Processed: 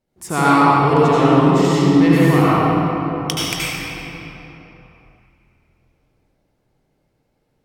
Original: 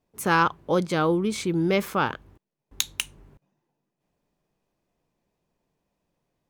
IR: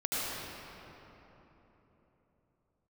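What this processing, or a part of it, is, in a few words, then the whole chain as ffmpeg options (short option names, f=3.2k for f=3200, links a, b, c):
slowed and reverbed: -filter_complex "[0:a]asetrate=37485,aresample=44100[a];[1:a]atrim=start_sample=2205[b];[a][b]afir=irnorm=-1:irlink=0,volume=1.5dB"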